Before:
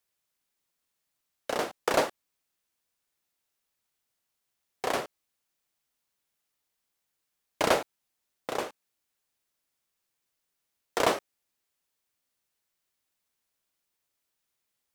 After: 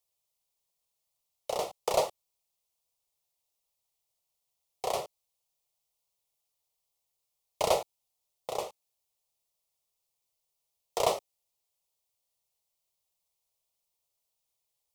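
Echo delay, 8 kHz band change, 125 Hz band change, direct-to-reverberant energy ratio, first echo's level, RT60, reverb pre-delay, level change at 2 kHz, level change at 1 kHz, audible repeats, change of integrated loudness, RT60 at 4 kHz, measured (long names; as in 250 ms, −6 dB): no echo audible, −0.5 dB, −3.5 dB, no reverb audible, no echo audible, no reverb audible, no reverb audible, −11.0 dB, −2.0 dB, no echo audible, −2.0 dB, no reverb audible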